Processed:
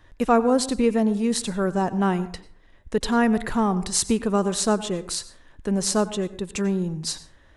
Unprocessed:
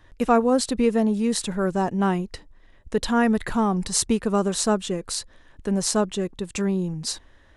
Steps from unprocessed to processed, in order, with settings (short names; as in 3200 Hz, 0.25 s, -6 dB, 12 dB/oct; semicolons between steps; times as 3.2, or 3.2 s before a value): plate-style reverb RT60 0.52 s, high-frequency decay 0.5×, pre-delay 80 ms, DRR 15 dB